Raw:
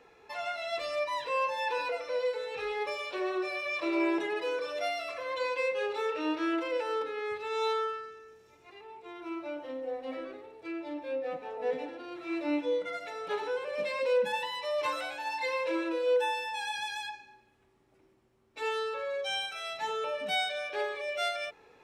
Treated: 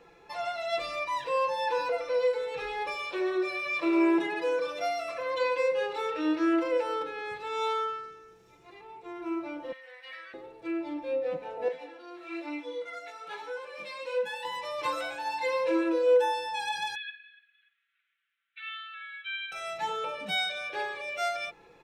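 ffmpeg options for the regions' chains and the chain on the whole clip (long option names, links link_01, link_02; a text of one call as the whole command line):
ffmpeg -i in.wav -filter_complex "[0:a]asettb=1/sr,asplit=3[link_01][link_02][link_03];[link_01]atrim=end=9.724[link_04];[link_02]atrim=start=9.72:end=10.34,asetpts=PTS-STARTPTS,afade=type=in:duration=0.004:curve=qsin,afade=type=out:start_time=0.616:duration=0.004:curve=qsin,highpass=frequency=1900:width_type=q:width=2.8,bandreject=frequency=6900:width=6.3[link_05];[link_03]atrim=start=10.336[link_06];[link_04][link_05]acrossfade=duration=0.004:curve1=hsin:curve2=qsin[link_07];[link_07][link_06]acrossfade=duration=0.004:curve1=qsin:curve2=hsin,asettb=1/sr,asplit=3[link_08][link_09][link_10];[link_08]atrim=end=11.684[link_11];[link_09]atrim=start=11.68:end=14.45,asetpts=PTS-STARTPTS,afade=type=in:duration=0.004:curve=qsin,afade=type=out:start_time=2.766:duration=0.004:curve=qsin,highpass=frequency=870:poles=1,flanger=delay=16.5:depth=3.6:speed=1.1[link_12];[link_10]atrim=start=14.446[link_13];[link_11][link_12]acrossfade=duration=0.004:curve1=hsin:curve2=qsin[link_14];[link_14][link_13]acrossfade=duration=0.004:curve1=qsin:curve2=hsin,asettb=1/sr,asplit=3[link_15][link_16][link_17];[link_15]atrim=end=16.954[link_18];[link_16]atrim=start=16.95:end=19.52,asetpts=PTS-STARTPTS,afade=type=in:duration=0.004:curve=qsin,afade=type=out:start_time=2.566:duration=0.004:curve=qsin,asuperpass=centerf=2300:order=12:qfactor=0.99,aecho=1:1:291|582:0.1|0.03,atrim=end_sample=113337[link_19];[link_17]atrim=start=19.516[link_20];[link_18][link_19]acrossfade=duration=0.004:curve1=hsin:curve2=qsin[link_21];[link_21][link_20]acrossfade=duration=0.004:curve1=qsin:curve2=hsin,lowshelf=frequency=240:gain=6.5,aecho=1:1:5.9:0.55" out.wav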